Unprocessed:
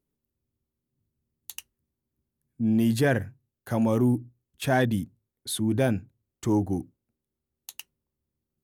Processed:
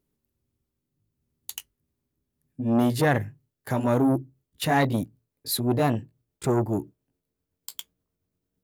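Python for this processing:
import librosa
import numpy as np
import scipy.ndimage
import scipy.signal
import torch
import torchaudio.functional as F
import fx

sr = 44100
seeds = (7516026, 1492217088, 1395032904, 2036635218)

y = fx.pitch_glide(x, sr, semitones=3.0, runs='starting unshifted')
y = fx.transformer_sat(y, sr, knee_hz=620.0)
y = F.gain(torch.from_numpy(y), 4.5).numpy()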